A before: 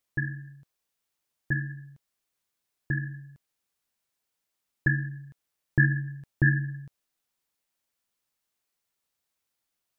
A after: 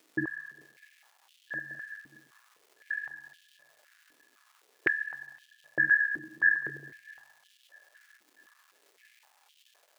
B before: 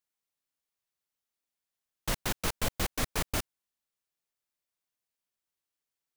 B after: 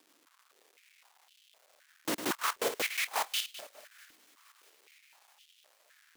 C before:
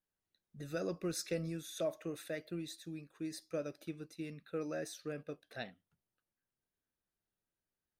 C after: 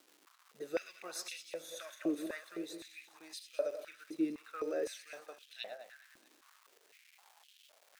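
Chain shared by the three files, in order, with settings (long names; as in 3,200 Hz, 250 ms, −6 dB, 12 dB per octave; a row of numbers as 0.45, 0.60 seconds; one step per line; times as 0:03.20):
feedback delay that plays each chunk backwards 103 ms, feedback 55%, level −9 dB
surface crackle 600 per second −50 dBFS
on a send: delay with a high-pass on its return 647 ms, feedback 59%, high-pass 1,700 Hz, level −23.5 dB
on the sum: high-pass on a step sequencer 3.9 Hz 300–3,100 Hz
level −2 dB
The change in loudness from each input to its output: −1.0, 0.0, +0.5 LU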